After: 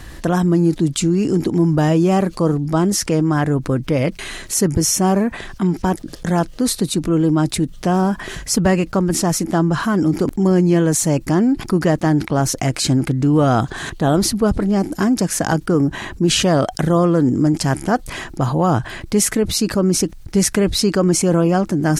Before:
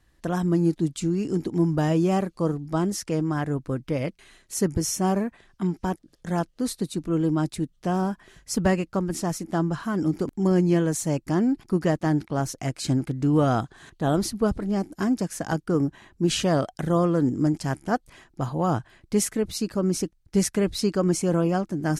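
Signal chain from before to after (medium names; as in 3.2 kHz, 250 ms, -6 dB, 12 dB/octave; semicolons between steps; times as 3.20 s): level flattener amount 50%; trim +5 dB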